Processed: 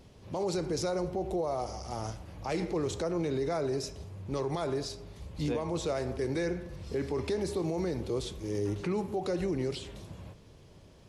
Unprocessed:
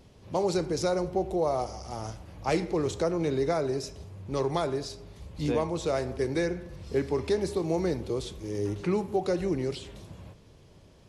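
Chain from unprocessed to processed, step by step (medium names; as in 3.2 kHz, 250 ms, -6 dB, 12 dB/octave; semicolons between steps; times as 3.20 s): peak limiter -23.5 dBFS, peak gain reduction 9 dB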